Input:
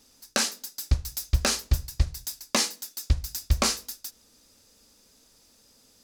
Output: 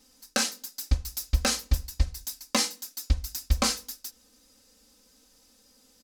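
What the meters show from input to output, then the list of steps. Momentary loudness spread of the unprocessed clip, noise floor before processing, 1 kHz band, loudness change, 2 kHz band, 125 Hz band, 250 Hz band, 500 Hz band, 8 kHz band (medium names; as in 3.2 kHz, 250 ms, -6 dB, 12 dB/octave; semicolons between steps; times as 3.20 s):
11 LU, -61 dBFS, -0.5 dB, -1.0 dB, -1.0 dB, -2.0 dB, +1.0 dB, -1.5 dB, -1.5 dB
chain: comb 3.9 ms, depth 74%; trim -3 dB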